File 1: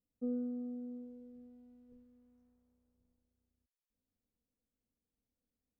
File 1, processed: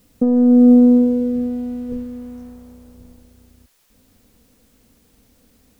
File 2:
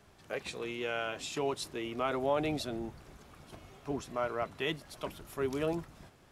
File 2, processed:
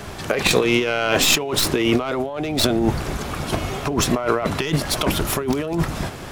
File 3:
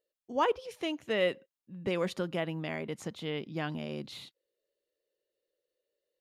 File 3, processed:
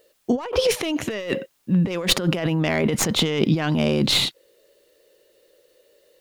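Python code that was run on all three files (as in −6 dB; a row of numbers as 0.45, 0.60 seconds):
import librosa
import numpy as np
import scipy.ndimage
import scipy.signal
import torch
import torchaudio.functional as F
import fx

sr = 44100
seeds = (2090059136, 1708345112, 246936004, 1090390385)

y = fx.tracing_dist(x, sr, depth_ms=0.062)
y = fx.over_compress(y, sr, threshold_db=-42.0, ratio=-1.0)
y = y * 10.0 ** (-3 / 20.0) / np.max(np.abs(y))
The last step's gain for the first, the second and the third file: +32.0, +21.5, +19.5 decibels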